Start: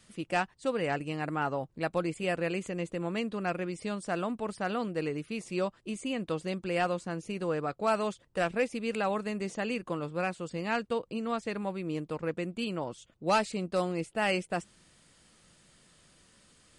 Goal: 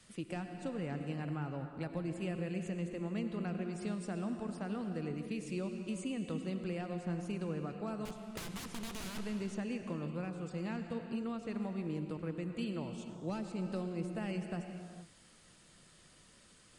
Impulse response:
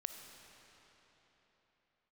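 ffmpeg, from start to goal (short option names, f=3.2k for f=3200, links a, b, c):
-filter_complex "[0:a]asettb=1/sr,asplit=3[a][b][c];[a]atrim=end=8.054[d];[b]atrim=start=8.05:end=9.19,asetpts=PTS-STARTPTS,afade=t=in:d=0.004:c=qsin,afade=t=out:st=1.136:d=0.004:c=qsin,aeval=exprs='(mod(29.9*val(0)+1,2)-1)/29.9':c=same[e];[c]atrim=start=9.186[f];[d][e]acrossfade=d=0.004:c1=hsin:c2=qsin[g];[g][f]acrossfade=d=0.004:c1=qsin:c2=hsin,acrossover=split=270[h][i];[i]acompressor=threshold=-43dB:ratio=6[j];[h][j]amix=inputs=2:normalize=0[k];[1:a]atrim=start_sample=2205,afade=t=out:st=0.31:d=0.01,atrim=end_sample=14112,asetrate=24255,aresample=44100[l];[k][l]afir=irnorm=-1:irlink=0,volume=-1dB"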